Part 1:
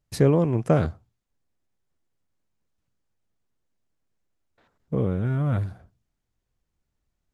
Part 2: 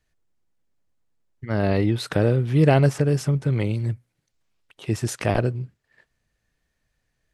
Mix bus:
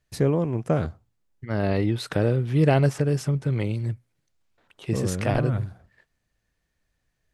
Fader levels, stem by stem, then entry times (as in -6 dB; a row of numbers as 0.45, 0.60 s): -3.0, -2.5 dB; 0.00, 0.00 s